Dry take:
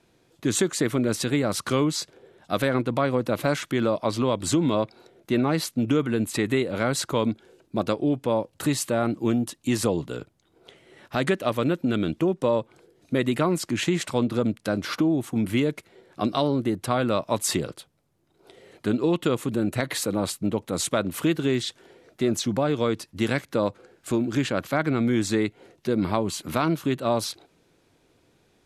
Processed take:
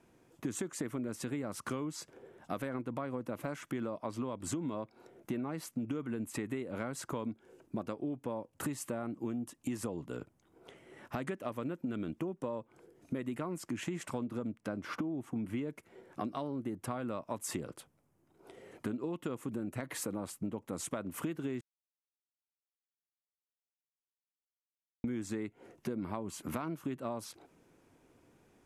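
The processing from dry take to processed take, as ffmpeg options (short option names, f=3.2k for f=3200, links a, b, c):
-filter_complex "[0:a]asettb=1/sr,asplit=3[a][b][c];[a]atrim=end=14.494[d];[b]atrim=start=14.49:end=15.68,asetpts=PTS-STARTPTS,afade=t=in:d=0.004:c=qsin,afade=t=out:st=1.186:d=0.004:c=qsin,highshelf=f=6.9k:g=-10[e];[c]atrim=start=15.676[f];[d][e]acrossfade=d=0.004:c1=hsin:c2=qsin[g];[g][f]acrossfade=d=0.004:c1=qsin:c2=hsin,asplit=3[h][i][j];[h]atrim=end=21.61,asetpts=PTS-STARTPTS,afade=t=out:st=21.606:d=0.004:c=hsin[k];[i]atrim=start=21.61:end=25.04,asetpts=PTS-STARTPTS,volume=0[l];[j]atrim=start=25.04,asetpts=PTS-STARTPTS,afade=t=in:d=0.004:c=hsin[m];[k][l][m]concat=n=3:v=0:a=1,equalizer=f=250:t=o:w=0.67:g=4,equalizer=f=1k:t=o:w=0.67:g=3,equalizer=f=4k:t=o:w=0.67:g=-10,acompressor=threshold=-32dB:ratio=5,volume=-3.5dB"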